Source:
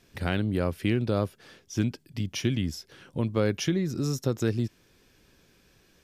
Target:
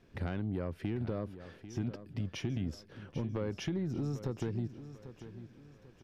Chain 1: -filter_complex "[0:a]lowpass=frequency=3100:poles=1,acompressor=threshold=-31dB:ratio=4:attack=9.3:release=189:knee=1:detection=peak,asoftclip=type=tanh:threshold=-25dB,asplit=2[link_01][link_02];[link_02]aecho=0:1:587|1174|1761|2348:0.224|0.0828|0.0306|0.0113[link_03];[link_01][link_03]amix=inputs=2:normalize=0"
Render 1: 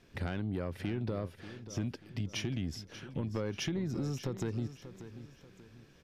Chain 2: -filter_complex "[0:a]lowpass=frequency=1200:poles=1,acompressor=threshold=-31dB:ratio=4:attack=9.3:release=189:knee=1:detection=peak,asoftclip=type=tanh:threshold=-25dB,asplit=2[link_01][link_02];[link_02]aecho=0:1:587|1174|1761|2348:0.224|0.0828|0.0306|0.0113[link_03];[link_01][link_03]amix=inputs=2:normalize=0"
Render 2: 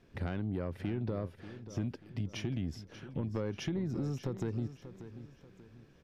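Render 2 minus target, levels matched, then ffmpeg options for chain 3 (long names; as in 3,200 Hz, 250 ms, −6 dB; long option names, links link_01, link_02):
echo 207 ms early
-filter_complex "[0:a]lowpass=frequency=1200:poles=1,acompressor=threshold=-31dB:ratio=4:attack=9.3:release=189:knee=1:detection=peak,asoftclip=type=tanh:threshold=-25dB,asplit=2[link_01][link_02];[link_02]aecho=0:1:794|1588|2382|3176:0.224|0.0828|0.0306|0.0113[link_03];[link_01][link_03]amix=inputs=2:normalize=0"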